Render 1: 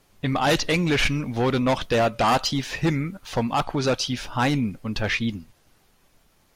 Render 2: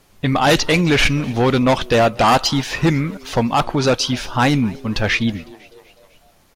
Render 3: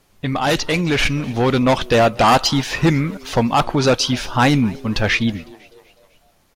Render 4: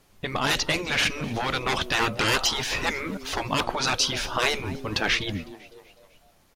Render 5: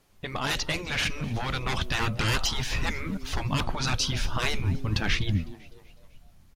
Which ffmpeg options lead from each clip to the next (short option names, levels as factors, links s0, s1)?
-filter_complex "[0:a]asplit=5[s0][s1][s2][s3][s4];[s1]adelay=252,afreqshift=120,volume=0.0668[s5];[s2]adelay=504,afreqshift=240,volume=0.038[s6];[s3]adelay=756,afreqshift=360,volume=0.0216[s7];[s4]adelay=1008,afreqshift=480,volume=0.0124[s8];[s0][s5][s6][s7][s8]amix=inputs=5:normalize=0,volume=2.11"
-af "dynaudnorm=f=210:g=13:m=2.51,volume=0.631"
-af "afftfilt=real='re*lt(hypot(re,im),0.562)':imag='im*lt(hypot(re,im),0.562)':win_size=1024:overlap=0.75,volume=0.794"
-af "asubboost=boost=6.5:cutoff=180,volume=0.596"